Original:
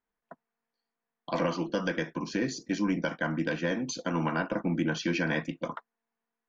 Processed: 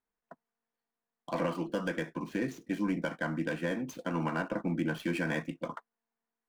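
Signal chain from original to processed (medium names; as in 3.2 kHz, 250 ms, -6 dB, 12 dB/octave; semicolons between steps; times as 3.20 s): median filter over 9 samples; trim -3 dB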